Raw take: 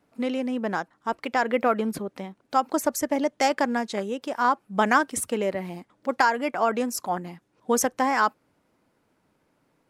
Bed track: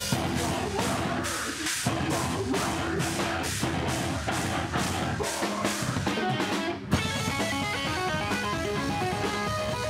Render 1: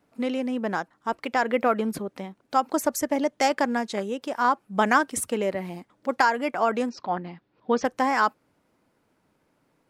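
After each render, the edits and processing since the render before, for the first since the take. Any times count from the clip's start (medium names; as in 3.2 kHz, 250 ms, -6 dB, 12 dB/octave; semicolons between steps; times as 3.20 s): 6.89–7.85 s: steep low-pass 4.7 kHz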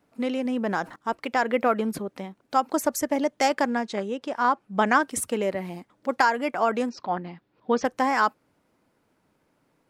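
0.45–0.96 s: level flattener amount 50%; 3.70–5.03 s: distance through air 57 m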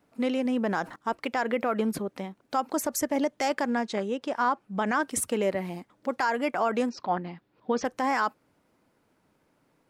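peak limiter -16 dBFS, peak gain reduction 9 dB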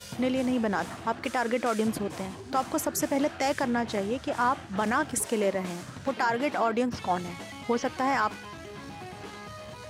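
add bed track -13 dB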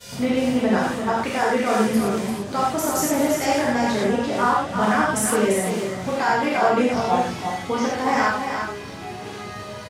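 on a send: delay 342 ms -6.5 dB; on the sum: gated-style reverb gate 140 ms flat, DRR -5.5 dB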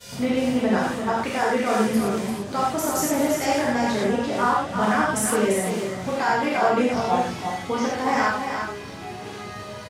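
trim -1.5 dB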